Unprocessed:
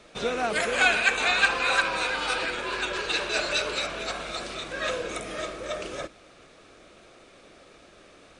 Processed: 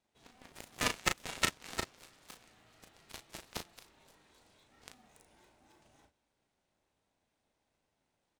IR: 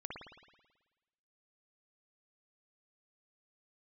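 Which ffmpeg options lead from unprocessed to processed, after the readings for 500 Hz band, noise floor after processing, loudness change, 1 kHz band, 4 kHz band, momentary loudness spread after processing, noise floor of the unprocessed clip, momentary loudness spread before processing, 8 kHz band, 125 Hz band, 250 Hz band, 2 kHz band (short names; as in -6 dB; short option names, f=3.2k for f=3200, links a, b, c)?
-19.0 dB, -83 dBFS, -10.5 dB, -15.5 dB, -13.5 dB, 22 LU, -54 dBFS, 13 LU, -6.5 dB, -5.5 dB, -11.0 dB, -18.0 dB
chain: -filter_complex "[0:a]highshelf=f=6.6k:g=11.5,aeval=exprs='0.531*(cos(1*acos(clip(val(0)/0.531,-1,1)))-cos(1*PI/2))+0.188*(cos(3*acos(clip(val(0)/0.531,-1,1)))-cos(3*PI/2))+0.00335*(cos(5*acos(clip(val(0)/0.531,-1,1)))-cos(5*PI/2))':c=same,asplit=2[a][b];[b]acrusher=samples=30:mix=1:aa=0.000001,volume=-4dB[c];[a][c]amix=inputs=2:normalize=0,aeval=exprs='val(0)*sin(2*PI*260*n/s)':c=same,asplit=2[d][e];[e]adelay=36,volume=-6.5dB[f];[d][f]amix=inputs=2:normalize=0"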